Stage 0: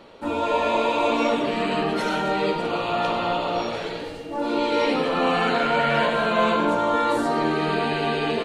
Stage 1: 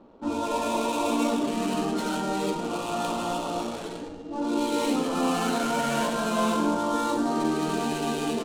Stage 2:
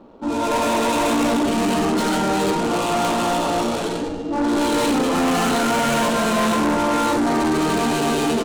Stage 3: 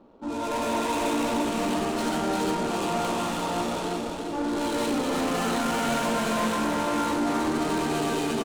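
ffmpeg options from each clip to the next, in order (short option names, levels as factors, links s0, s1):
-af "adynamicsmooth=sensitivity=7.5:basefreq=930,equalizer=f=125:t=o:w=1:g=-7,equalizer=f=250:t=o:w=1:g=6,equalizer=f=500:t=o:w=1:g=-6,equalizer=f=2000:t=o:w=1:g=-10,equalizer=f=8000:t=o:w=1:g=6,volume=0.794"
-af "dynaudnorm=f=290:g=3:m=2.11,asoftclip=type=tanh:threshold=0.075,volume=2.11"
-af "aecho=1:1:347|694|1041|1388|1735|2082:0.596|0.268|0.121|0.0543|0.0244|0.011,volume=0.376"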